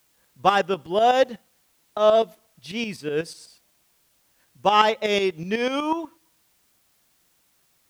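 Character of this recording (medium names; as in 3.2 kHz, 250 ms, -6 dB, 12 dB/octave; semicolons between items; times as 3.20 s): tremolo saw up 8.1 Hz, depth 65%; a quantiser's noise floor 12-bit, dither triangular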